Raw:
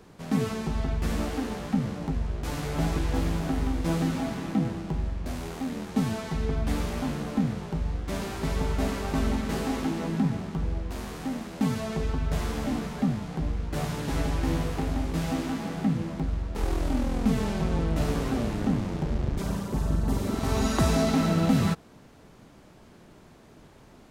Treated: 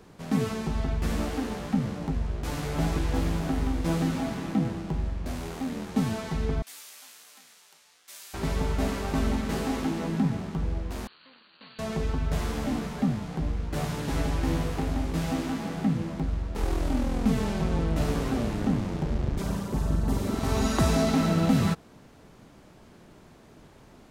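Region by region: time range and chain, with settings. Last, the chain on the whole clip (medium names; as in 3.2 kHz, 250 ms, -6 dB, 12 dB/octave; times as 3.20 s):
6.62–8.34 s: high-pass 950 Hz 6 dB/octave + differentiator
11.07–11.79 s: comb filter that takes the minimum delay 0.71 ms + brick-wall FIR low-pass 4.7 kHz + differentiator
whole clip: none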